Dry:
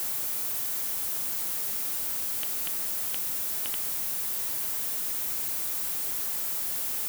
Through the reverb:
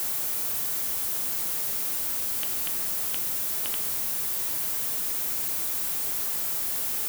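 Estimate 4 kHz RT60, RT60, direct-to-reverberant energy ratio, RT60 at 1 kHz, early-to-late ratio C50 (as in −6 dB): 0.75 s, 1.1 s, 8.0 dB, 1.0 s, 11.5 dB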